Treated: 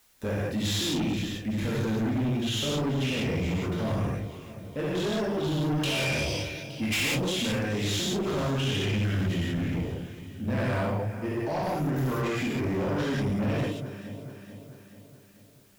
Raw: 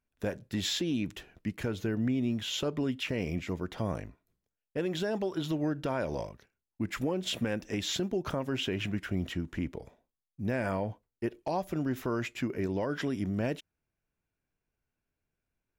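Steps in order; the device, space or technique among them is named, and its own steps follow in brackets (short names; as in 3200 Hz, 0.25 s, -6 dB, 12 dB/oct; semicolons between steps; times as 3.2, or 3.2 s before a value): 5.71–7.01 resonant high shelf 1800 Hz +13.5 dB, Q 3; echo with dull and thin repeats by turns 0.217 s, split 820 Hz, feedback 72%, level -13.5 dB; non-linear reverb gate 0.22 s flat, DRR -7.5 dB; open-reel tape (soft clip -25 dBFS, distortion -9 dB; bell 110 Hz +3 dB 1.18 oct; white noise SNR 34 dB)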